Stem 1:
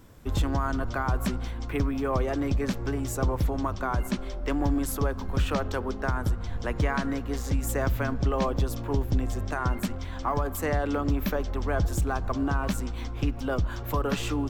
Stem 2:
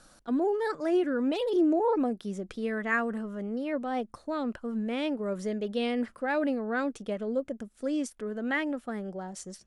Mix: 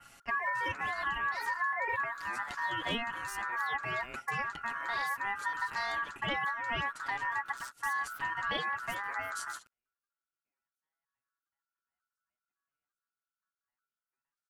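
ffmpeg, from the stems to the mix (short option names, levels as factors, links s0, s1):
-filter_complex "[0:a]highshelf=f=4400:t=q:w=1.5:g=6.5,alimiter=limit=0.0944:level=0:latency=1:release=54,adelay=200,volume=0.299[s0];[1:a]adynamicequalizer=threshold=0.00251:dfrequency=5600:dqfactor=0.91:tfrequency=5600:tqfactor=0.91:attack=5:release=100:ratio=0.375:range=1.5:mode=cutabove:tftype=bell,aecho=1:1:7:0.92,volume=1.06,asplit=2[s1][s2];[s2]apad=whole_len=648141[s3];[s0][s3]sidechaingate=range=0.00224:threshold=0.00794:ratio=16:detection=peak[s4];[s4][s1]amix=inputs=2:normalize=0,aeval=exprs='val(0)*sin(2*PI*1400*n/s)':c=same,acompressor=threshold=0.0316:ratio=6"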